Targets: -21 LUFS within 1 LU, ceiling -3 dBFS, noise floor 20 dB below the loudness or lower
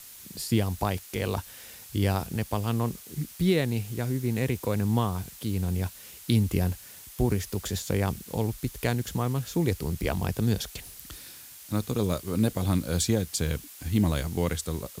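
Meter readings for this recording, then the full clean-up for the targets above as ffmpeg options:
noise floor -47 dBFS; noise floor target -49 dBFS; loudness -28.5 LUFS; peak level -9.5 dBFS; loudness target -21.0 LUFS
-> -af "afftdn=nr=6:nf=-47"
-af "volume=2.37,alimiter=limit=0.708:level=0:latency=1"

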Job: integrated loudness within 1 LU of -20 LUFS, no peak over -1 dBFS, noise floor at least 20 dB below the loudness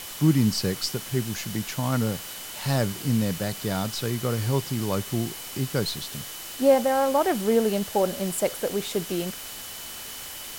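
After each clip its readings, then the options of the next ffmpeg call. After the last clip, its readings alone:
steady tone 3 kHz; tone level -46 dBFS; noise floor -38 dBFS; noise floor target -46 dBFS; loudness -26.0 LUFS; peak level -8.0 dBFS; loudness target -20.0 LUFS
-> -af "bandreject=f=3000:w=30"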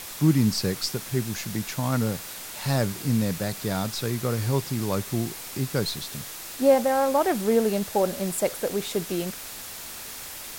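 steady tone not found; noise floor -39 dBFS; noise floor target -47 dBFS
-> -af "afftdn=nr=8:nf=-39"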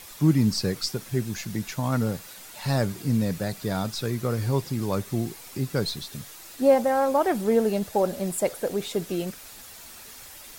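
noise floor -45 dBFS; noise floor target -46 dBFS
-> -af "afftdn=nr=6:nf=-45"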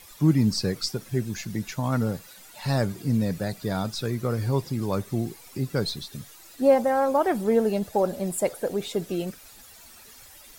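noise floor -49 dBFS; loudness -26.0 LUFS; peak level -8.5 dBFS; loudness target -20.0 LUFS
-> -af "volume=2"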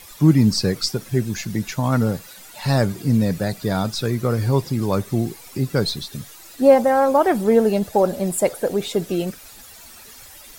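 loudness -20.0 LUFS; peak level -2.5 dBFS; noise floor -43 dBFS

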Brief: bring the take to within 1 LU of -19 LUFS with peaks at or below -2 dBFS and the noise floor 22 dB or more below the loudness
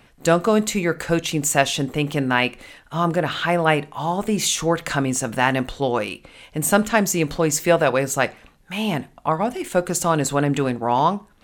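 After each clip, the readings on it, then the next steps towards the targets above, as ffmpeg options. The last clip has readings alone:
loudness -21.0 LUFS; peak level -2.5 dBFS; loudness target -19.0 LUFS
-> -af "volume=1.26,alimiter=limit=0.794:level=0:latency=1"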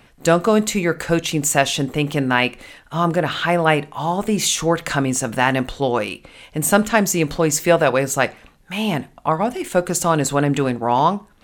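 loudness -19.0 LUFS; peak level -2.0 dBFS; noise floor -52 dBFS

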